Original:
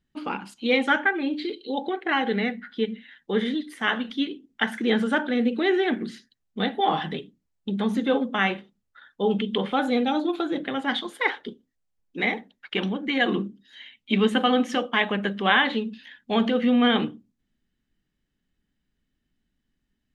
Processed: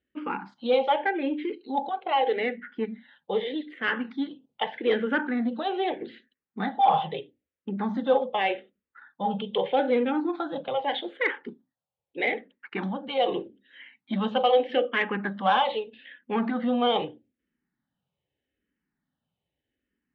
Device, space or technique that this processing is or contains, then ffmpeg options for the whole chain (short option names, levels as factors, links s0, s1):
barber-pole phaser into a guitar amplifier: -filter_complex "[0:a]asplit=2[s0][s1];[s1]afreqshift=-0.81[s2];[s0][s2]amix=inputs=2:normalize=1,asoftclip=type=tanh:threshold=0.158,highpass=100,equalizer=f=210:t=q:w=4:g=-4,equalizer=f=530:t=q:w=4:g=8,equalizer=f=840:t=q:w=4:g=6,lowpass=f=3500:w=0.5412,lowpass=f=3500:w=1.3066"